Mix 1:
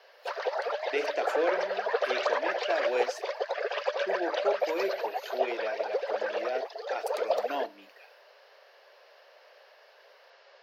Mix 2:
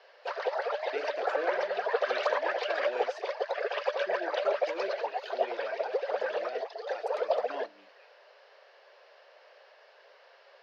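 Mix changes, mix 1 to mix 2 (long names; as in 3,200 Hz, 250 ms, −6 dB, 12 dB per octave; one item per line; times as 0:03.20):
speech −7.5 dB
master: add high-frequency loss of the air 75 metres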